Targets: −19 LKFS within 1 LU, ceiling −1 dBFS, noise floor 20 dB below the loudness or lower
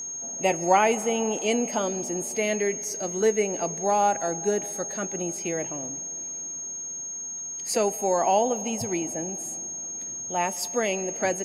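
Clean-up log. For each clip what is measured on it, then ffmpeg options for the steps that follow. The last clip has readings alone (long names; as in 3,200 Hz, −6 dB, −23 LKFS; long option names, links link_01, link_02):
interfering tone 6,500 Hz; level of the tone −32 dBFS; integrated loudness −26.5 LKFS; sample peak −7.5 dBFS; target loudness −19.0 LKFS
→ -af "bandreject=frequency=6500:width=30"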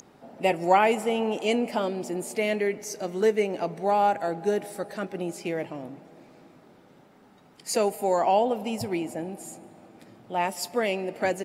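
interfering tone none found; integrated loudness −27.0 LKFS; sample peak −8.0 dBFS; target loudness −19.0 LKFS
→ -af "volume=8dB,alimiter=limit=-1dB:level=0:latency=1"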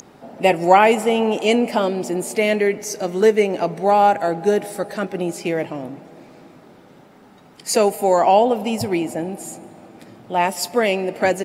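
integrated loudness −19.0 LKFS; sample peak −1.0 dBFS; background noise floor −48 dBFS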